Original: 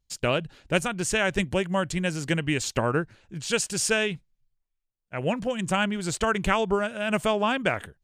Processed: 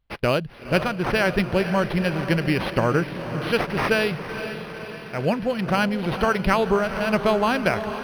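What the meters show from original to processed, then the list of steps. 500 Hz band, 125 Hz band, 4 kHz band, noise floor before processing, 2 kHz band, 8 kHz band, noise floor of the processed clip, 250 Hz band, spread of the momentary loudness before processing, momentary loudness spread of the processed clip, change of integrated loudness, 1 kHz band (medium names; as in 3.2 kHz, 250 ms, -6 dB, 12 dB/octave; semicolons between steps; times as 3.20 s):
+4.5 dB, +5.0 dB, +0.5 dB, -79 dBFS, +3.0 dB, -12.0 dB, -38 dBFS, +5.0 dB, 5 LU, 9 LU, +3.5 dB, +4.5 dB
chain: echo that smears into a reverb 488 ms, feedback 61%, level -10 dB; decimation joined by straight lines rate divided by 6×; trim +4 dB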